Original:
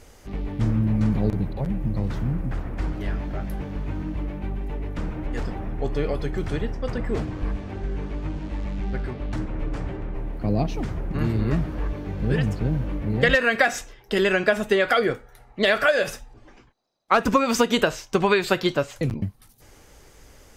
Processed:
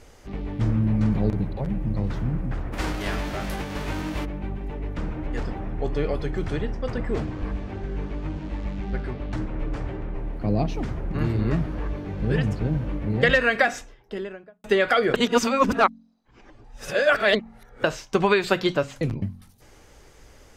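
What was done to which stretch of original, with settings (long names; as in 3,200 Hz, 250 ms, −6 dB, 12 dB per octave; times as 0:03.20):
0:02.72–0:04.24: spectral envelope flattened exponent 0.6
0:13.49–0:14.64: fade out and dull
0:15.14–0:17.84: reverse
whole clip: high-shelf EQ 9,900 Hz −9.5 dB; hum removal 45.08 Hz, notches 6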